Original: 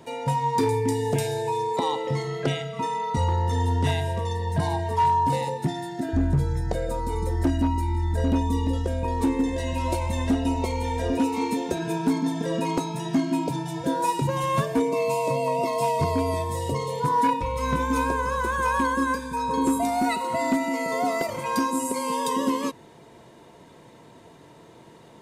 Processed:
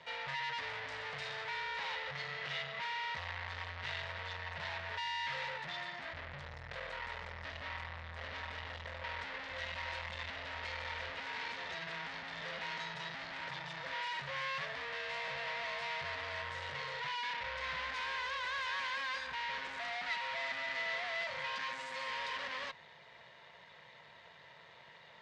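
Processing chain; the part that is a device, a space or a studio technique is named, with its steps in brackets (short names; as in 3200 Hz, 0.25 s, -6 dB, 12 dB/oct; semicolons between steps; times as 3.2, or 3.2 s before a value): 17.94–19.27 tilt +2 dB/oct; scooped metal amplifier (tube stage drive 38 dB, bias 0.8; speaker cabinet 110–4200 Hz, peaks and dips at 110 Hz -6 dB, 560 Hz +6 dB, 1900 Hz +8 dB; passive tone stack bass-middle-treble 10-0-10); gain +7 dB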